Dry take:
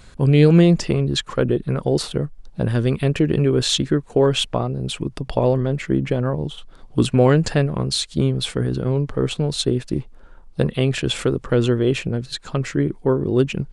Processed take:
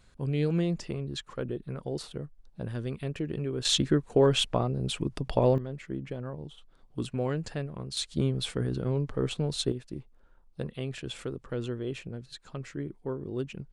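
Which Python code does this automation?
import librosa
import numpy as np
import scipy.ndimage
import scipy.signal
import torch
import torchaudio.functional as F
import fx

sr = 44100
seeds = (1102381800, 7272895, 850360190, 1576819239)

y = fx.gain(x, sr, db=fx.steps((0.0, -15.0), (3.65, -5.5), (5.58, -16.0), (7.97, -8.5), (9.72, -16.0)))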